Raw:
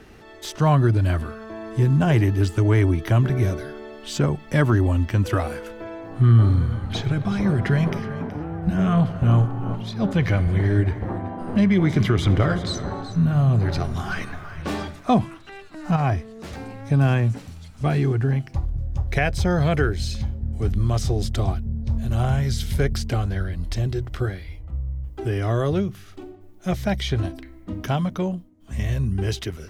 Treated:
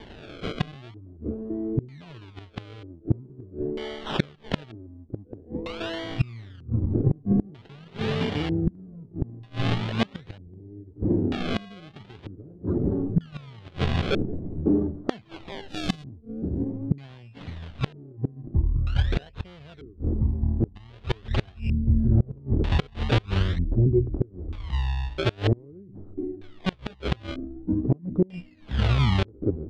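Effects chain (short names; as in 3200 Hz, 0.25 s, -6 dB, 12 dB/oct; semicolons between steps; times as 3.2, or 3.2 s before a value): decimation with a swept rate 33×, swing 100% 0.45 Hz; 15.68–16.64 tone controls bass +5 dB, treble +15 dB; LFO low-pass square 0.53 Hz 320–3400 Hz; dynamic EQ 430 Hz, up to +5 dB, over -43 dBFS, Q 6.6; flipped gate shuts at -12 dBFS, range -29 dB; gain +2 dB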